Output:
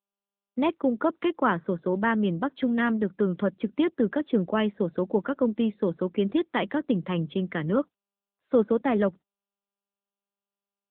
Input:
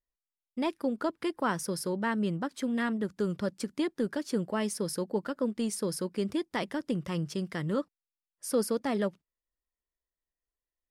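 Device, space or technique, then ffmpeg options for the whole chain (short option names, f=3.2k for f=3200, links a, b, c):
mobile call with aggressive noise cancelling: -af "highpass=f=160:w=0.5412,highpass=f=160:w=1.3066,afftdn=nr=19:nf=-53,volume=6.5dB" -ar 8000 -c:a libopencore_amrnb -b:a 10200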